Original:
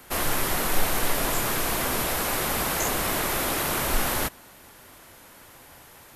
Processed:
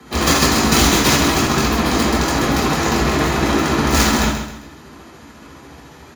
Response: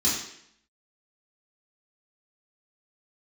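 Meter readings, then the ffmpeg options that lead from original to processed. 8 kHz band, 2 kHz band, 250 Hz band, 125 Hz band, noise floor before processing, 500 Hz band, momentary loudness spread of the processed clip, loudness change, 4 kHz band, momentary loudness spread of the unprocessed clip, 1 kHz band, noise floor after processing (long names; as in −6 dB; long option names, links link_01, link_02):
+7.5 dB, +9.0 dB, +17.0 dB, +14.5 dB, −50 dBFS, +10.5 dB, 4 LU, +9.5 dB, +11.5 dB, 1 LU, +10.0 dB, −41 dBFS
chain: -filter_complex "[0:a]aemphasis=mode=reproduction:type=75fm,acrossover=split=280|6200[link_01][link_02][link_03];[link_03]alimiter=level_in=19.5dB:limit=-24dB:level=0:latency=1,volume=-19.5dB[link_04];[link_01][link_02][link_04]amix=inputs=3:normalize=0,aeval=exprs='(mod(7.94*val(0)+1,2)-1)/7.94':channel_layout=same,tremolo=f=14:d=0.59,aecho=1:1:132|264|396|528:0.398|0.135|0.046|0.0156[link_05];[1:a]atrim=start_sample=2205,atrim=end_sample=4410[link_06];[link_05][link_06]afir=irnorm=-1:irlink=0,volume=1dB"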